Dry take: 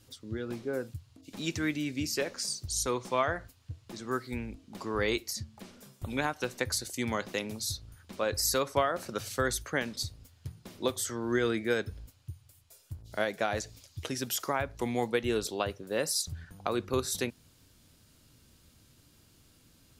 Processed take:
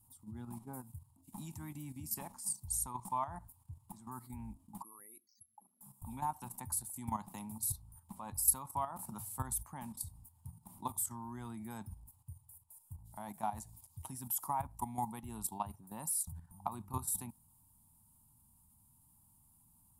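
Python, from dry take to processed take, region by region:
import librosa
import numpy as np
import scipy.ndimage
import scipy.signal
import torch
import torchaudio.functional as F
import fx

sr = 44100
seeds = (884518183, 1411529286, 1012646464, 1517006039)

y = fx.chain(x, sr, fx.envelope_sharpen(power=3.0),
    fx.resample_bad(factor=4, down='filtered', up='zero_stuff'),
    fx.bandpass_edges(low_hz=660.0, high_hz=2300.0), at=(4.82, 5.81))
y = fx.curve_eq(y, sr, hz=(130.0, 210.0, 490.0, 900.0, 1500.0, 4500.0, 9800.0, 15000.0), db=(0, 1, -26, 10, -18, -16, 11, 8))
y = fx.level_steps(y, sr, step_db=11)
y = fx.peak_eq(y, sr, hz=6200.0, db=-8.5, octaves=0.37)
y = F.gain(torch.from_numpy(y), -1.0).numpy()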